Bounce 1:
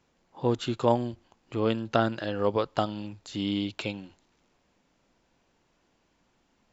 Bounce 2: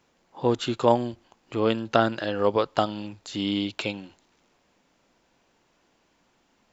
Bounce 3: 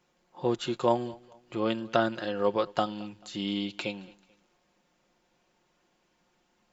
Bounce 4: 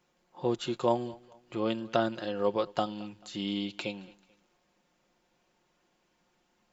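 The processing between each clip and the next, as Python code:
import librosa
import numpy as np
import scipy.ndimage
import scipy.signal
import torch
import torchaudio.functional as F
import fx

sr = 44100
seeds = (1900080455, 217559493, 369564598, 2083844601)

y1 = fx.low_shelf(x, sr, hz=170.0, db=-7.5)
y1 = F.gain(torch.from_numpy(y1), 4.5).numpy()
y2 = y1 + 0.49 * np.pad(y1, (int(5.6 * sr / 1000.0), 0))[:len(y1)]
y2 = fx.echo_feedback(y2, sr, ms=219, feedback_pct=37, wet_db=-23.0)
y2 = F.gain(torch.from_numpy(y2), -5.5).numpy()
y3 = fx.dynamic_eq(y2, sr, hz=1600.0, q=1.4, threshold_db=-42.0, ratio=4.0, max_db=-4)
y3 = F.gain(torch.from_numpy(y3), -1.5).numpy()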